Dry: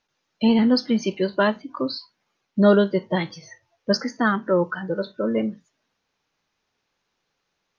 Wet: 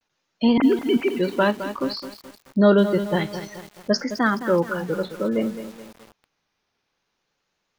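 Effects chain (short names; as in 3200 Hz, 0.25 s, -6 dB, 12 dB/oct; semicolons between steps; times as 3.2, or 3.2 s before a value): 0.58–1.15 sine-wave speech; vibrato 0.56 Hz 63 cents; lo-fi delay 0.213 s, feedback 55%, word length 6-bit, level -10.5 dB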